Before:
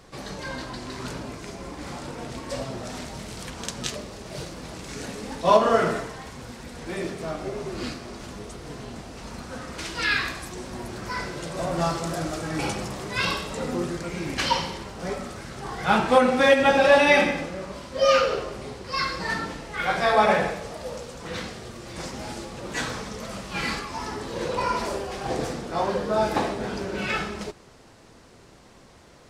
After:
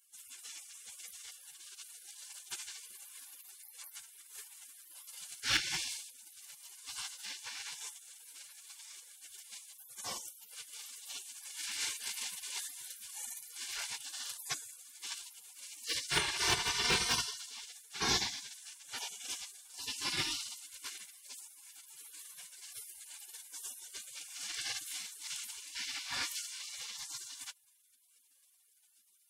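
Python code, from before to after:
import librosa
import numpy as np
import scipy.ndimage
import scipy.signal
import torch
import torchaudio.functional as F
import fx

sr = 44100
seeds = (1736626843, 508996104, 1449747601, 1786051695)

y = np.clip(x, -10.0 ** (-8.5 / 20.0), 10.0 ** (-8.5 / 20.0))
y = fx.spec_gate(y, sr, threshold_db=-30, keep='weak')
y = fx.notch_comb(y, sr, f0_hz=640.0)
y = F.gain(torch.from_numpy(y), 7.0).numpy()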